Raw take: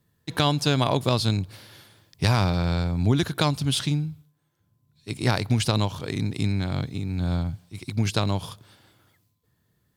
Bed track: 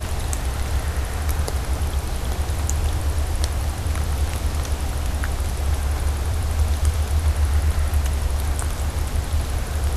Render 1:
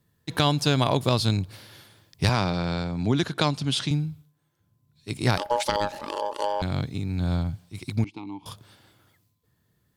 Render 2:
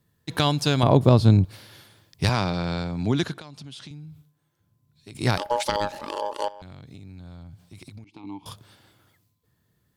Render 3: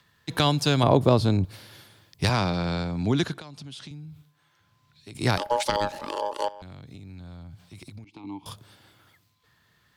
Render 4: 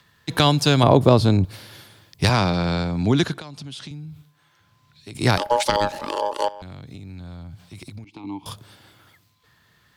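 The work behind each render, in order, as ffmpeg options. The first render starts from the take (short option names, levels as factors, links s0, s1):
-filter_complex "[0:a]asettb=1/sr,asplit=3[s0][s1][s2];[s0]atrim=end=2.294[s3];[s1]atrim=start=2.29:end=3.91,asetpts=PTS-STARTPTS,afade=t=in:d=0.004:c=qsin,afade=t=out:st=1.616:d=0.004:c=qsin,highpass=140,lowpass=7500[s4];[s2]atrim=start=3.906[s5];[s3][s4]acrossfade=d=0.004:c1=hsin:c2=qsin[s6];[s6][s5]acrossfade=d=0.004:c1=qsin:c2=hsin,asettb=1/sr,asplit=3[s7][s8][s9];[s7]atrim=end=5.374[s10];[s8]atrim=start=5.37:end=6.62,asetpts=PTS-STARTPTS,afade=t=in:d=0.004:c=qsin,afade=t=out:st=1.246:d=0.004:c=qsin,aeval=exprs='val(0)*sin(2*PI*720*n/s)':c=same[s11];[s9]atrim=start=6.616[s12];[s10][s11]acrossfade=d=0.004:c1=hsin:c2=qsin[s13];[s13][s12]acrossfade=d=0.004:c1=qsin:c2=hsin,asettb=1/sr,asplit=3[s14][s15][s16];[s14]atrim=end=8.044[s17];[s15]atrim=start=8.04:end=8.46,asetpts=PTS-STARTPTS,afade=t=in:d=0.004:c=qsin,afade=t=out:st=0.416:d=0.004:c=qsin,asplit=3[s18][s19][s20];[s18]bandpass=f=300:t=q:w=8,volume=1[s21];[s19]bandpass=f=870:t=q:w=8,volume=0.501[s22];[s20]bandpass=f=2240:t=q:w=8,volume=0.355[s23];[s21][s22][s23]amix=inputs=3:normalize=0[s24];[s16]atrim=start=8.456[s25];[s17][s24]acrossfade=d=0.004:c1=hsin:c2=qsin[s26];[s26][s25]acrossfade=d=0.004:c1=qsin:c2=hsin"
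-filter_complex "[0:a]asettb=1/sr,asplit=3[s0][s1][s2];[s0]atrim=end=0.834[s3];[s1]atrim=start=0.83:end=1.45,asetpts=PTS-STARTPTS,afade=t=in:d=0.004:c=qsin,afade=t=out:st=0.616:d=0.004:c=qsin,tiltshelf=f=1300:g=8.5[s4];[s2]atrim=start=1.446[s5];[s3][s4]acrossfade=d=0.004:c1=hsin:c2=qsin[s6];[s6][s5]acrossfade=d=0.004:c1=qsin:c2=hsin,asettb=1/sr,asplit=3[s7][s8][s9];[s7]atrim=end=3.354[s10];[s8]atrim=start=3.35:end=5.15,asetpts=PTS-STARTPTS,afade=t=in:d=0.004:c=qsin,afade=t=out:st=1.796:d=0.004:c=qsin,acompressor=threshold=0.0112:ratio=6:attack=3.2:release=140:knee=1:detection=peak[s11];[s9]atrim=start=5.146[s12];[s10][s11]acrossfade=d=0.004:c1=hsin:c2=qsin[s13];[s13][s12]acrossfade=d=0.004:c1=qsin:c2=hsin,asettb=1/sr,asplit=3[s14][s15][s16];[s14]atrim=end=6.484[s17];[s15]atrim=start=6.48:end=8.24,asetpts=PTS-STARTPTS,afade=t=in:d=0.004:c=qsin,afade=t=out:st=1.756:d=0.004:c=qsin,acompressor=threshold=0.0112:ratio=12:attack=3.2:release=140:knee=1:detection=peak[s18];[s16]atrim=start=8.236[s19];[s17][s18]acrossfade=d=0.004:c1=hsin:c2=qsin[s20];[s20][s19]acrossfade=d=0.004:c1=qsin:c2=hsin"
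-filter_complex "[0:a]acrossover=split=260|850|5400[s0][s1][s2][s3];[s0]alimiter=limit=0.112:level=0:latency=1[s4];[s2]acompressor=mode=upward:threshold=0.00224:ratio=2.5[s5];[s4][s1][s5][s3]amix=inputs=4:normalize=0"
-af "volume=1.78,alimiter=limit=0.891:level=0:latency=1"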